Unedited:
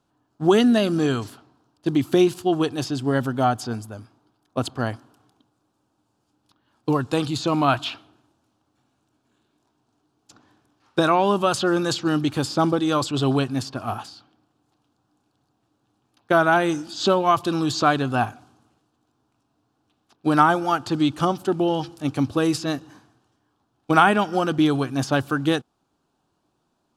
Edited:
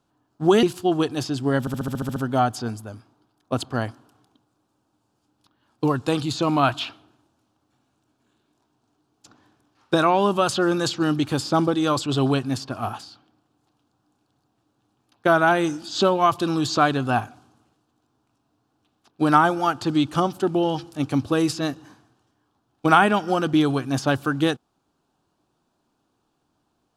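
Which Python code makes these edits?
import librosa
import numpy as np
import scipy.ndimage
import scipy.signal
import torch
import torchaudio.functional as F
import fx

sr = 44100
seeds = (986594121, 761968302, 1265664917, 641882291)

y = fx.edit(x, sr, fx.cut(start_s=0.63, length_s=1.61),
    fx.stutter(start_s=3.21, slice_s=0.07, count=9), tone=tone)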